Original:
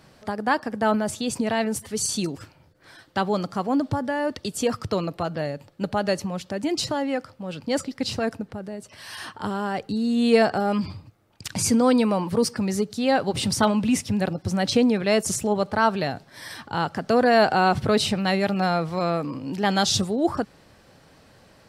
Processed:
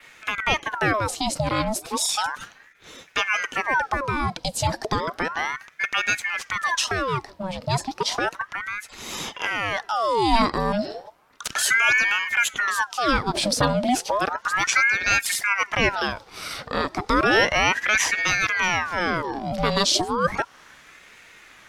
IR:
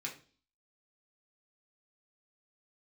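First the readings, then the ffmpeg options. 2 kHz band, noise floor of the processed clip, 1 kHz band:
+9.5 dB, -52 dBFS, +2.0 dB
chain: -filter_complex "[0:a]adynamicequalizer=threshold=0.00631:dfrequency=4300:dqfactor=1.7:tfrequency=4300:tqfactor=1.7:attack=5:release=100:ratio=0.375:range=2.5:mode=boostabove:tftype=bell,asplit=2[s0][s1];[s1]acompressor=threshold=0.0282:ratio=6,volume=1.33[s2];[s0][s2]amix=inputs=2:normalize=0,aeval=exprs='val(0)*sin(2*PI*1200*n/s+1200*0.7/0.33*sin(2*PI*0.33*n/s))':c=same"

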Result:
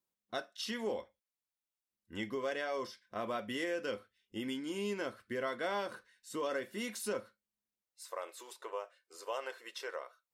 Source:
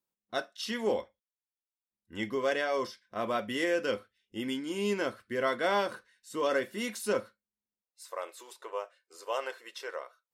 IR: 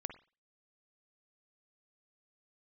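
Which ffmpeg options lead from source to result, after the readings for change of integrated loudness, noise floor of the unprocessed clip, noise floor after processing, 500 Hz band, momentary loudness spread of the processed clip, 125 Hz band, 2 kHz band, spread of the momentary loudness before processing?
-6.5 dB, under -85 dBFS, under -85 dBFS, -7.0 dB, 10 LU, -5.5 dB, -6.5 dB, 14 LU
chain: -af "acompressor=threshold=0.0141:ratio=2,volume=0.891"

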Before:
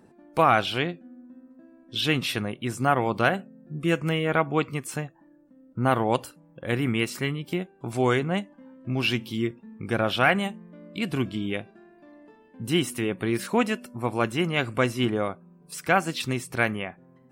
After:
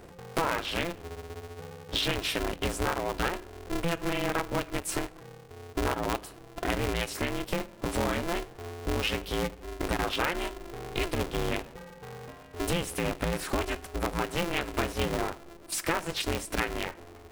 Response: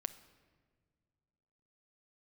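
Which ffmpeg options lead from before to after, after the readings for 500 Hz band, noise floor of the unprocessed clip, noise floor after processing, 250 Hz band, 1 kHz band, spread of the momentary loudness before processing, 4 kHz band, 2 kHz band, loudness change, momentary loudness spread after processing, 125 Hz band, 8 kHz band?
-5.0 dB, -57 dBFS, -50 dBFS, -6.5 dB, -6.0 dB, 12 LU, -2.5 dB, -5.5 dB, -5.5 dB, 13 LU, -6.5 dB, +2.0 dB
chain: -filter_complex "[0:a]acompressor=threshold=0.02:ratio=5,asplit=2[s0][s1];[1:a]atrim=start_sample=2205,asetrate=83790,aresample=44100[s2];[s1][s2]afir=irnorm=-1:irlink=0,volume=2.66[s3];[s0][s3]amix=inputs=2:normalize=0,aeval=exprs='val(0)*sgn(sin(2*PI*170*n/s))':c=same"

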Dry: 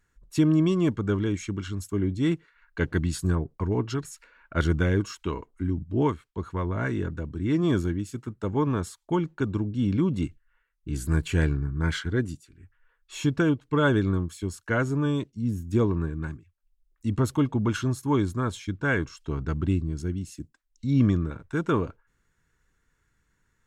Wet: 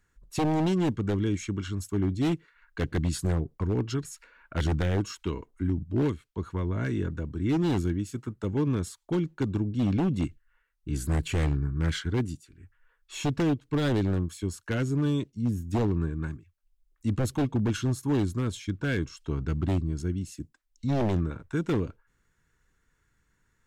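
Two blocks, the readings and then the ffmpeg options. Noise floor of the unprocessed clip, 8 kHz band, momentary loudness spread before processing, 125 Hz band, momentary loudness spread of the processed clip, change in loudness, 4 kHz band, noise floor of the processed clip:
-72 dBFS, 0.0 dB, 11 LU, -1.5 dB, 9 LU, -2.0 dB, -0.5 dB, -73 dBFS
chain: -filter_complex "[0:a]acrossover=split=470|1900[s0][s1][s2];[s1]acompressor=threshold=0.00708:ratio=6[s3];[s0][s3][s2]amix=inputs=3:normalize=0,aeval=exprs='0.106*(abs(mod(val(0)/0.106+3,4)-2)-1)':c=same"

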